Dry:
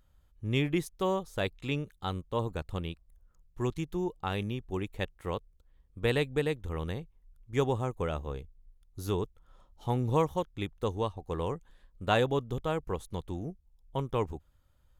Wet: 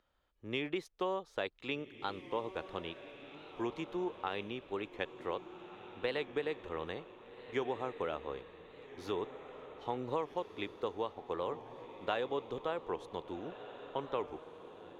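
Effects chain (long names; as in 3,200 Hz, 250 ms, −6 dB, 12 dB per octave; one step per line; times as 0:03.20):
three-way crossover with the lows and the highs turned down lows −19 dB, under 280 Hz, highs −21 dB, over 5,000 Hz
downward compressor 4 to 1, threshold −32 dBFS, peak gain reduction 9.5 dB
on a send: feedback delay with all-pass diffusion 1,580 ms, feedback 48%, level −12 dB
on the sum: wow of a warped record 45 rpm, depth 100 cents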